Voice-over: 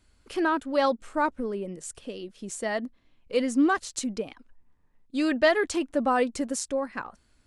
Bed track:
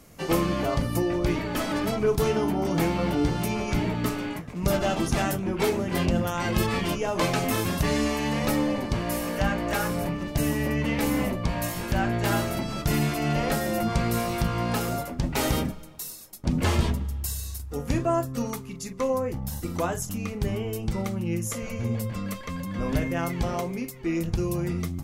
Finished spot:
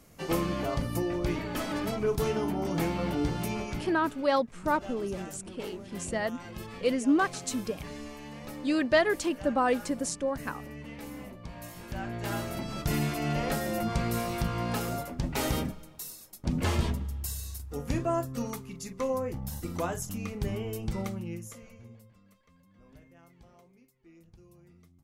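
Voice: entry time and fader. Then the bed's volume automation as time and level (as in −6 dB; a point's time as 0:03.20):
3.50 s, −2.0 dB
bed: 0:03.60 −5 dB
0:04.00 −17 dB
0:11.35 −17 dB
0:12.79 −4.5 dB
0:21.07 −4.5 dB
0:22.21 −29.5 dB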